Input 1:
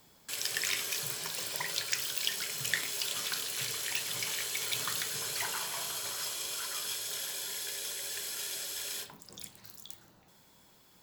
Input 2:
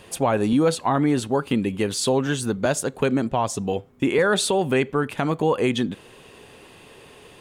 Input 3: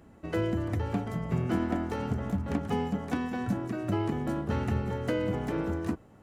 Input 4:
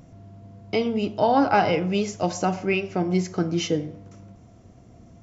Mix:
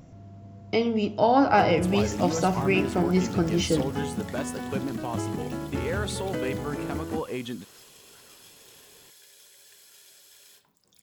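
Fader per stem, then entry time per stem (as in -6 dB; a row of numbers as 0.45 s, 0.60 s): -15.5 dB, -11.5 dB, -2.0 dB, -0.5 dB; 1.55 s, 1.70 s, 1.25 s, 0.00 s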